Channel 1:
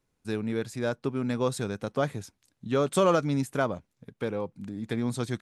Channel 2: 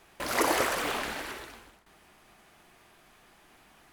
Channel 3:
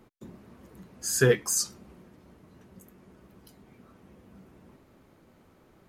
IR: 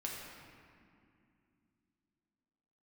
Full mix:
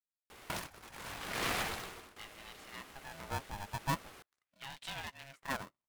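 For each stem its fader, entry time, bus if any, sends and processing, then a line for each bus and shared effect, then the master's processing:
-3.5 dB, 1.90 s, no send, wah-wah 0.42 Hz 540–3000 Hz, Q 2.7
-2.5 dB, 0.30 s, no send, compressor with a negative ratio -37 dBFS, ratio -0.5
mute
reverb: none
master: polarity switched at an audio rate 410 Hz

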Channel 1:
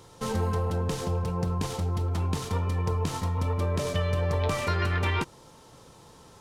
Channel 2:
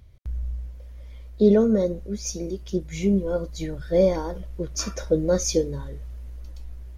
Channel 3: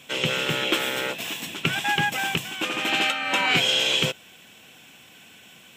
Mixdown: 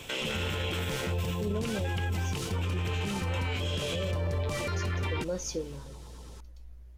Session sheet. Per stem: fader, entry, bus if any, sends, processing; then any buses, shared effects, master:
+1.5 dB, 0.00 s, no send, LFO notch saw down 8.9 Hz 580–1800 Hz
-10.5 dB, 0.00 s, no send, none
+2.5 dB, 0.00 s, no send, auto duck -13 dB, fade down 1.60 s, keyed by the second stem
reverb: none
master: peak limiter -23.5 dBFS, peak gain reduction 15 dB

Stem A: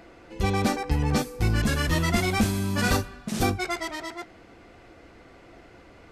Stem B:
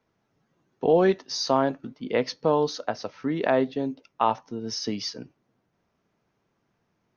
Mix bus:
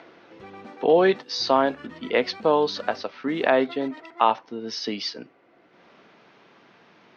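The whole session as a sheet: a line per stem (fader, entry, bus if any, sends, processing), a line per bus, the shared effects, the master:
+0.5 dB, 0.00 s, no send, compression 6:1, threshold -29 dBFS, peak gain reduction 11 dB; auto duck -8 dB, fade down 0.50 s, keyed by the second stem
+2.0 dB, 0.00 s, no send, peaking EQ 4.1 kHz +13 dB 1.8 oct; upward compressor, threshold -38 dBFS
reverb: none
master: band-pass 240–2500 Hz

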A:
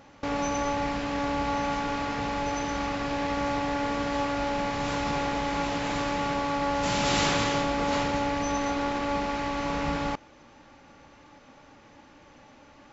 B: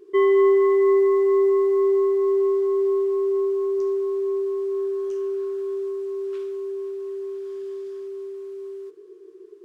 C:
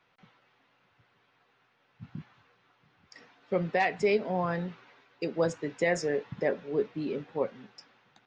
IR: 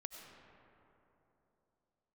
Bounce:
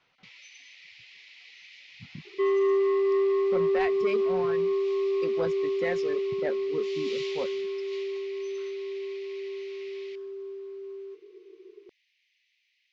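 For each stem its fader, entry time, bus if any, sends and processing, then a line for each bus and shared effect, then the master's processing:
-9.0 dB, 0.00 s, no send, steep high-pass 2 kHz 72 dB/octave
-5.0 dB, 2.25 s, no send, none
-2.0 dB, 0.00 s, no send, reverb removal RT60 2 s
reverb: none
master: low-pass 4.9 kHz 24 dB/octave; saturation -18 dBFS, distortion -20 dB

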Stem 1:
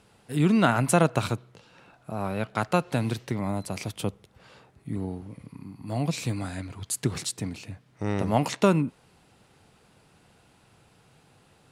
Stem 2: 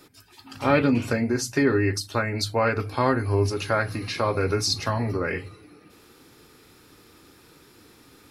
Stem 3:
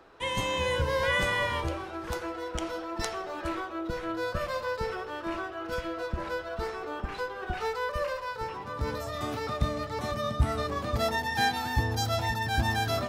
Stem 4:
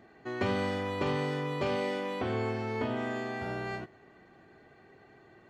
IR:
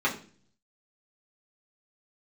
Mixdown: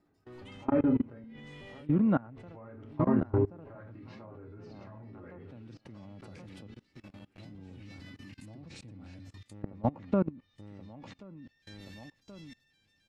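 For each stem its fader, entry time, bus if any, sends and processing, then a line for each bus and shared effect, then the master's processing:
-7.5 dB, 1.50 s, no send, echo send -5 dB, comb 3.6 ms, depth 36%; auto duck -15 dB, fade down 0.20 s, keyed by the second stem
-10.0 dB, 0.00 s, muted 1.24–2.48 s, send -12.5 dB, echo send -16.5 dB, bass shelf 100 Hz -11.5 dB
-3.5 dB, 0.25 s, send -19.5 dB, echo send -15.5 dB, steep high-pass 2.1 kHz 36 dB/octave; compression 6:1, threshold -39 dBFS, peak gain reduction 10.5 dB
-10.5 dB, 0.00 s, no send, no echo send, peak limiter -29.5 dBFS, peak gain reduction 10.5 dB; hard clipper -38 dBFS, distortion -10 dB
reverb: on, RT60 0.45 s, pre-delay 3 ms
echo: feedback delay 1079 ms, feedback 19%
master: low-pass that closes with the level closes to 1.5 kHz, closed at -28 dBFS; tilt EQ -3 dB/octave; level held to a coarse grid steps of 24 dB

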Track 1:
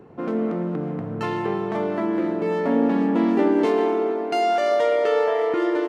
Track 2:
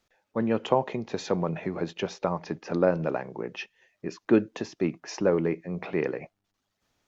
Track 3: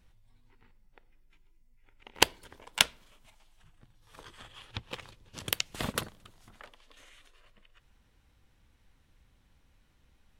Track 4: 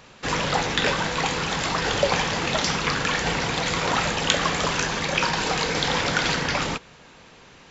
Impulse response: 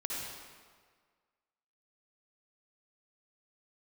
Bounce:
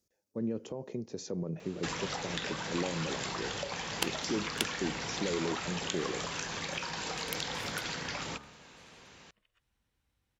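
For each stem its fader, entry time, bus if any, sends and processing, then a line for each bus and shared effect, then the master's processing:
mute
-5.0 dB, 0.00 s, no send, peak limiter -19 dBFS, peak gain reduction 10.5 dB; high-order bell 1.6 kHz -13.5 dB 2.8 oct
-12.0 dB, 1.80 s, no send, treble shelf 11 kHz -3 dB
-6.5 dB, 1.60 s, no send, de-hum 71.65 Hz, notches 21; compression, threshold -29 dBFS, peak gain reduction 13.5 dB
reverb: none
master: high-pass 44 Hz; treble shelf 5 kHz +6 dB

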